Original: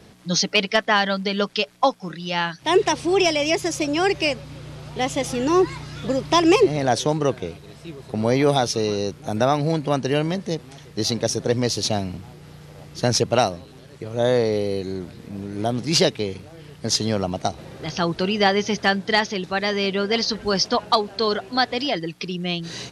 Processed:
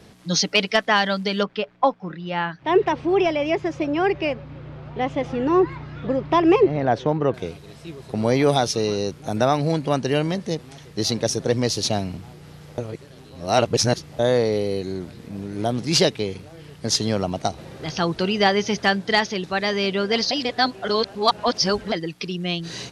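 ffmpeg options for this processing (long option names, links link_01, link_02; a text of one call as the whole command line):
ffmpeg -i in.wav -filter_complex "[0:a]asettb=1/sr,asplit=3[link_01][link_02][link_03];[link_01]atrim=end=1.434[link_04];[link_02]atrim=start=1.43:end=7.34,asetpts=PTS-STARTPTS,afade=type=in:duration=0.004:curve=qsin,afade=type=out:start_time=5.906:duration=0.004:curve=qsin,lowpass=2000[link_05];[link_03]atrim=start=7.336[link_06];[link_04][link_05]acrossfade=duration=0.004:curve1=hsin:curve2=qsin[link_07];[link_07][link_06]acrossfade=duration=0.004:curve1=qsin:curve2=hsin,asplit=5[link_08][link_09][link_10][link_11][link_12];[link_08]atrim=end=12.782[link_13];[link_09]atrim=start=12.778:end=14.192,asetpts=PTS-STARTPTS,areverse[link_14];[link_10]atrim=start=14.188:end=20.312[link_15];[link_11]atrim=start=20.308:end=21.922,asetpts=PTS-STARTPTS,areverse[link_16];[link_12]atrim=start=21.918[link_17];[link_13][link_14]acrossfade=duration=0.004:curve1=hsin:curve2=hsin[link_18];[link_18][link_15]acrossfade=duration=0.004:curve1=hsin:curve2=hsin[link_19];[link_19][link_16]acrossfade=duration=0.004:curve1=hsin:curve2=hsin[link_20];[link_20][link_17]acrossfade=duration=0.004:curve1=hsin:curve2=hsin" out.wav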